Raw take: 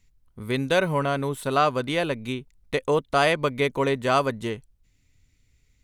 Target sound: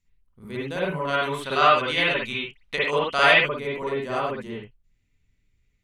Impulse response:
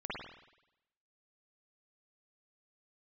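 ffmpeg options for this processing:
-filter_complex "[0:a]asplit=3[s0][s1][s2];[s0]afade=t=out:st=1.07:d=0.02[s3];[s1]equalizer=f=3100:w=0.33:g=15,afade=t=in:st=1.07:d=0.02,afade=t=out:st=3.39:d=0.02[s4];[s2]afade=t=in:st=3.39:d=0.02[s5];[s3][s4][s5]amix=inputs=3:normalize=0[s6];[1:a]atrim=start_sample=2205,atrim=end_sample=6174[s7];[s6][s7]afir=irnorm=-1:irlink=0,volume=0.473"

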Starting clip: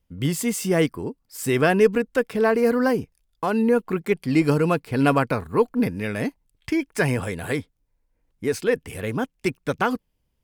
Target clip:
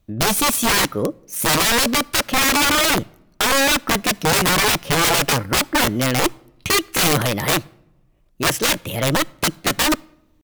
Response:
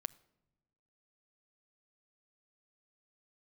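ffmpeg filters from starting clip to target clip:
-filter_complex "[0:a]aeval=exprs='(mod(10*val(0)+1,2)-1)/10':c=same,asetrate=53981,aresample=44100,atempo=0.816958,asplit=2[s0][s1];[1:a]atrim=start_sample=2205[s2];[s1][s2]afir=irnorm=-1:irlink=0,volume=1.58[s3];[s0][s3]amix=inputs=2:normalize=0,volume=1.26"

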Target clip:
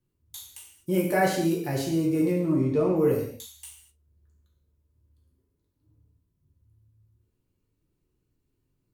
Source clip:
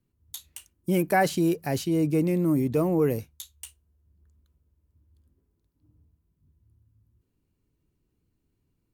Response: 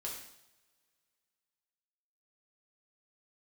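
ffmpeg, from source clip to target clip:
-filter_complex "[0:a]asettb=1/sr,asplit=3[s0][s1][s2];[s0]atrim=end=2.314[s3];[s1]atrim=start=2.31:end=2.96,asetpts=PTS-STARTPTS,afade=t=in:d=0.004:c=qsin,afade=t=out:st=0.646:d=0.004:c=qsin,lowpass=5300[s4];[s2]atrim=start=2.956[s5];[s3][s4]acrossfade=d=0.004:c1=hsin:c2=qsin[s6];[s6][s5]acrossfade=d=0.004:c1=qsin:c2=hsin[s7];[1:a]atrim=start_sample=2205,afade=t=out:st=0.31:d=0.01,atrim=end_sample=14112[s8];[s7][s8]afir=irnorm=-1:irlink=0"

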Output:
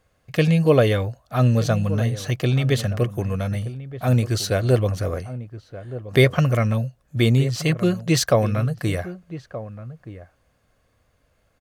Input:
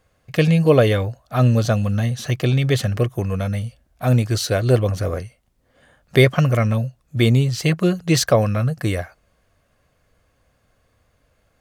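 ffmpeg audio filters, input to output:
-filter_complex "[0:a]asplit=2[s0][s1];[s1]adelay=1224,volume=0.2,highshelf=f=4000:g=-27.6[s2];[s0][s2]amix=inputs=2:normalize=0,volume=0.794"

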